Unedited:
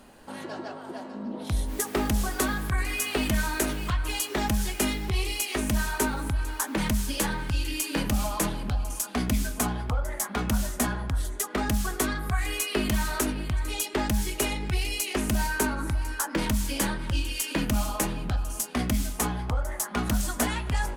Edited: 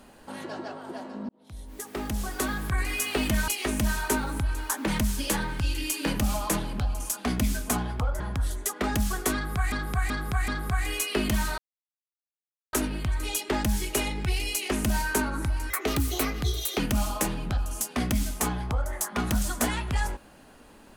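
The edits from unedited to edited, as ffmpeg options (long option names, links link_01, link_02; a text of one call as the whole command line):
ffmpeg -i in.wav -filter_complex "[0:a]asplit=10[link_01][link_02][link_03][link_04][link_05][link_06][link_07][link_08][link_09][link_10];[link_01]atrim=end=1.29,asetpts=PTS-STARTPTS,afade=type=out:start_time=1.286:duration=0.004:curve=hsin[link_11];[link_02]atrim=start=1.29:end=3.482,asetpts=PTS-STARTPTS,afade=type=in:duration=1.52[link_12];[link_03]atrim=start=5.378:end=10.102[link_13];[link_04]atrim=start=10.938:end=12.462[link_14];[link_05]atrim=start=12.078:end=12.462[link_15];[link_06]atrim=start=12.078:end=12.462[link_16];[link_07]atrim=start=12.078:end=13.18,asetpts=PTS-STARTPTS,afade=type=out:start_time=1.098:duration=0.004:curve=hsin,apad=pad_dur=1.15[link_17];[link_08]atrim=start=13.18:end=16.154,asetpts=PTS-STARTPTS,afade=type=in:duration=0.004:curve=hsin[link_18];[link_09]atrim=start=16.15:end=17.58,asetpts=PTS-STARTPTS,asetrate=57771,aresample=44100[link_19];[link_10]atrim=start=17.576[link_20];[link_11][link_12]concat=n=2:v=0:a=1[link_21];[link_21][link_13]acrossfade=duration=0.004:curve1=hsin:curve2=hsin[link_22];[link_22][link_14]acrossfade=duration=0.004:curve1=hsin:curve2=hsin[link_23];[link_23][link_15]acrossfade=duration=0.004:curve1=hsin:curve2=hsin[link_24];[link_24][link_16]acrossfade=duration=0.004:curve1=hsin:curve2=hsin[link_25];[link_17][link_18]concat=n=2:v=0:a=1[link_26];[link_25][link_26]acrossfade=duration=0.004:curve1=hsin:curve2=hsin[link_27];[link_27][link_19]acrossfade=duration=0.004:curve1=hsin:curve2=hsin[link_28];[link_28][link_20]acrossfade=duration=0.004:curve1=hsin:curve2=hsin" out.wav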